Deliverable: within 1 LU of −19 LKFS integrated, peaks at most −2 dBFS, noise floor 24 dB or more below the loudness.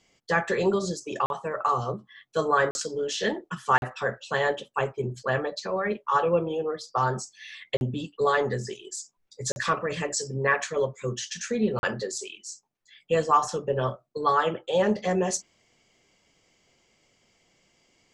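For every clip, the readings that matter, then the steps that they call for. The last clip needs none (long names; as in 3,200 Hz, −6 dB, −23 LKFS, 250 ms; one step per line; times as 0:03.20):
number of dropouts 6; longest dropout 41 ms; integrated loudness −27.5 LKFS; sample peak −8.5 dBFS; target loudness −19.0 LKFS
→ repair the gap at 0:01.26/0:02.71/0:03.78/0:07.77/0:09.52/0:11.79, 41 ms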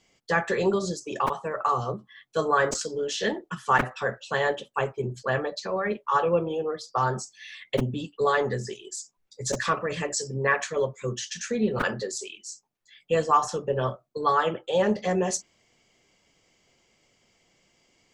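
number of dropouts 0; integrated loudness −27.0 LKFS; sample peak −8.5 dBFS; target loudness −19.0 LKFS
→ level +8 dB
brickwall limiter −2 dBFS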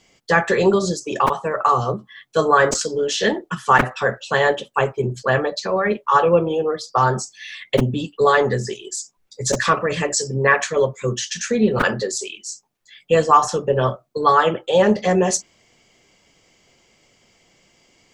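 integrated loudness −19.0 LKFS; sample peak −2.0 dBFS; background noise floor −62 dBFS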